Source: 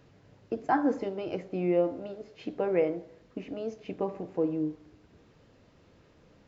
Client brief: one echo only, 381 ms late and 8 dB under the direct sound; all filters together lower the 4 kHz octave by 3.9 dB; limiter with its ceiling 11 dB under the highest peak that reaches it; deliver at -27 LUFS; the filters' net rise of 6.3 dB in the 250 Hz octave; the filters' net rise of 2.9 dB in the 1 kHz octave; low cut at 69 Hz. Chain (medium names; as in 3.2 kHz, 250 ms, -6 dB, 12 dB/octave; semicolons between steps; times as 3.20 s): high-pass 69 Hz; peaking EQ 250 Hz +8.5 dB; peaking EQ 1 kHz +3.5 dB; peaking EQ 4 kHz -6.5 dB; peak limiter -21.5 dBFS; delay 381 ms -8 dB; trim +5 dB